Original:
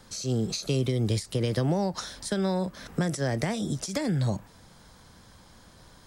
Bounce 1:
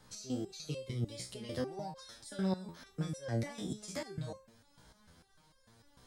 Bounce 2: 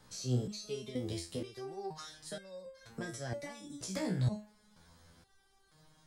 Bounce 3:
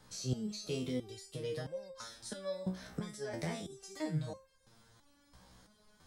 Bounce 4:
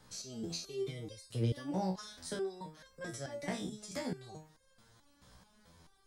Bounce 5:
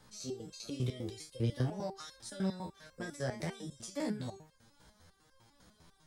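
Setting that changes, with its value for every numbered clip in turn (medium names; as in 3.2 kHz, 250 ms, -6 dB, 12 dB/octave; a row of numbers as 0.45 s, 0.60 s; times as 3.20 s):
resonator arpeggio, rate: 6.7 Hz, 2.1 Hz, 3 Hz, 4.6 Hz, 10 Hz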